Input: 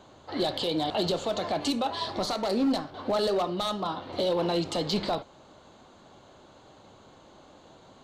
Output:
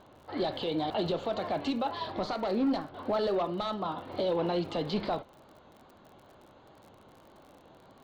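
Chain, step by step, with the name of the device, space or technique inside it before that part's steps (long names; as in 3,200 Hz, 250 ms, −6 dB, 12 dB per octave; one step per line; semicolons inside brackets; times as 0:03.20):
lo-fi chain (low-pass filter 3,000 Hz 12 dB per octave; tape wow and flutter; surface crackle 62 per second −44 dBFS)
level −2.5 dB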